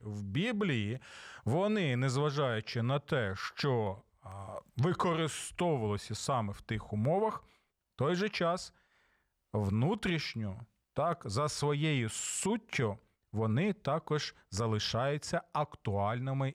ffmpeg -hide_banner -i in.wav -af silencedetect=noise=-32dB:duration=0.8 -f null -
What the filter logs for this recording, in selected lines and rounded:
silence_start: 8.56
silence_end: 9.54 | silence_duration: 0.98